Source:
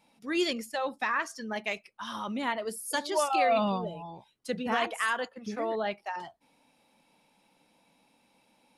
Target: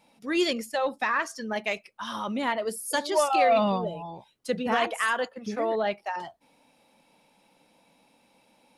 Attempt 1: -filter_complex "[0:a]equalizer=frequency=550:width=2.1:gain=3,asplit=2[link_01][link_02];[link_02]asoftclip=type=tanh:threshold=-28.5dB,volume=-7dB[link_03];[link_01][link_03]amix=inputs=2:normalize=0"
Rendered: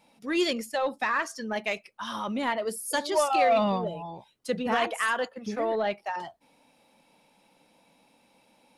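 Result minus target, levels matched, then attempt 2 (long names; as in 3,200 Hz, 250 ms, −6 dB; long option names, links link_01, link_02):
soft clipping: distortion +8 dB
-filter_complex "[0:a]equalizer=frequency=550:width=2.1:gain=3,asplit=2[link_01][link_02];[link_02]asoftclip=type=tanh:threshold=-20.5dB,volume=-7dB[link_03];[link_01][link_03]amix=inputs=2:normalize=0"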